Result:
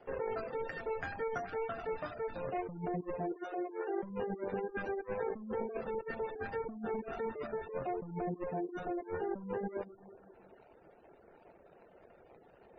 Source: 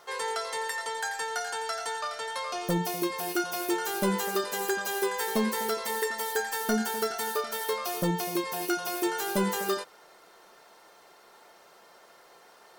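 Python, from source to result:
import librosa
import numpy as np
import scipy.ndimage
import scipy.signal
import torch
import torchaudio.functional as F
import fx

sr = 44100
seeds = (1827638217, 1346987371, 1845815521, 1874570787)

y = scipy.ndimage.median_filter(x, 41, mode='constant')
y = np.clip(y, -10.0 ** (-26.0 / 20.0), 10.0 ** (-26.0 / 20.0))
y = fx.cheby1_highpass(y, sr, hz=310.0, order=5, at=(3.32, 4.03))
y = fx.echo_bbd(y, sr, ms=198, stages=2048, feedback_pct=50, wet_db=-21.5)
y = fx.over_compress(y, sr, threshold_db=-38.0, ratio=-1.0)
y = y + 10.0 ** (-17.5 / 20.0) * np.pad(y, (int(98 * sr / 1000.0), 0))[:len(y)]
y = fx.wow_flutter(y, sr, seeds[0], rate_hz=2.1, depth_cents=20.0)
y = fx.spec_gate(y, sr, threshold_db=-25, keep='strong')
y = fx.dereverb_blind(y, sr, rt60_s=0.55)
y = y * librosa.db_to_amplitude(1.0)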